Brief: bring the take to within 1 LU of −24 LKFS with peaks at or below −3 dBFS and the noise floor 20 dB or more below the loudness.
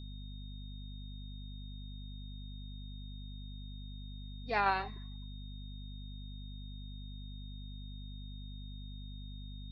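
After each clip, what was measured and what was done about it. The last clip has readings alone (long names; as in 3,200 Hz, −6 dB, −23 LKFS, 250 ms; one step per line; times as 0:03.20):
mains hum 50 Hz; hum harmonics up to 250 Hz; level of the hum −43 dBFS; interfering tone 3,700 Hz; level of the tone −55 dBFS; integrated loudness −43.0 LKFS; sample peak −17.0 dBFS; target loudness −24.0 LKFS
→ hum removal 50 Hz, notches 5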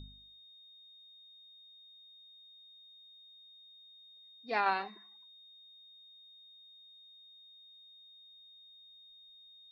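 mains hum none found; interfering tone 3,700 Hz; level of the tone −55 dBFS
→ notch filter 3,700 Hz, Q 30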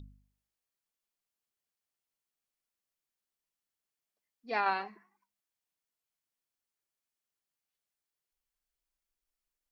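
interfering tone none found; integrated loudness −33.0 LKFS; sample peak −17.5 dBFS; target loudness −24.0 LKFS
→ level +9 dB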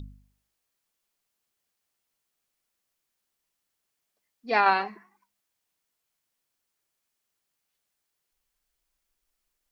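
integrated loudness −24.0 LKFS; sample peak −8.5 dBFS; background noise floor −81 dBFS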